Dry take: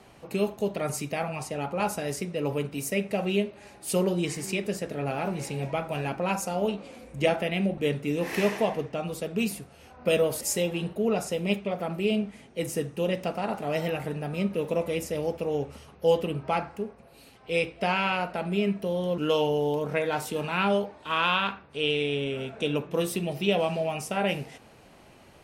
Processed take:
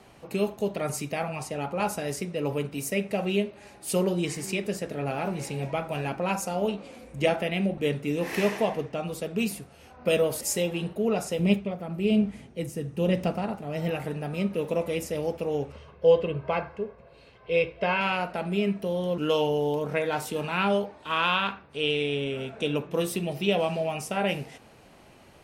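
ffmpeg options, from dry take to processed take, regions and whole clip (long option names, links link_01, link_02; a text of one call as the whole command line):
ffmpeg -i in.wav -filter_complex "[0:a]asettb=1/sr,asplit=3[link_01][link_02][link_03];[link_01]atrim=end=11.394[link_04];[link_02]atrim=start=11.39:end=13.91,asetpts=PTS-STARTPTS,afade=type=in:duration=0.004:curve=qsin,afade=type=out:start_time=2.516:duration=0.004:curve=qsin,equalizer=frequency=84:width=0.36:gain=10.5,tremolo=f=1.1:d=0.61[link_05];[link_03]atrim=start=13.906[link_06];[link_04][link_05]acrossfade=duration=0.004:curve1=hsin:curve2=qsin[link_07];[link_07][link_06]acrossfade=duration=0.004:curve1=qsin:curve2=hsin,asettb=1/sr,asplit=3[link_08][link_09][link_10];[link_08]atrim=end=15.724[link_11];[link_09]atrim=start=15.72:end=18.01,asetpts=PTS-STARTPTS,afade=type=in:duration=0.004:curve=qsin,afade=type=out:start_time=2.286:duration=0.004:curve=qsin,lowpass=3400,aecho=1:1:1.9:0.54,atrim=end_sample=100989[link_12];[link_10]atrim=start=18.006[link_13];[link_11][link_12]acrossfade=duration=0.004:curve1=hsin:curve2=qsin[link_14];[link_14][link_13]acrossfade=duration=0.004:curve1=qsin:curve2=hsin" out.wav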